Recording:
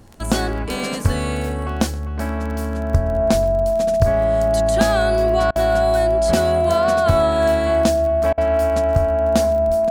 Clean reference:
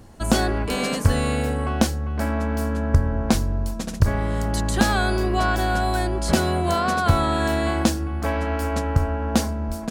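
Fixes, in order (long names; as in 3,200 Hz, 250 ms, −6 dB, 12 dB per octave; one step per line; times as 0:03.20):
click removal
notch filter 660 Hz, Q 30
repair the gap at 0:05.51/0:08.33, 46 ms
echo removal 124 ms −22.5 dB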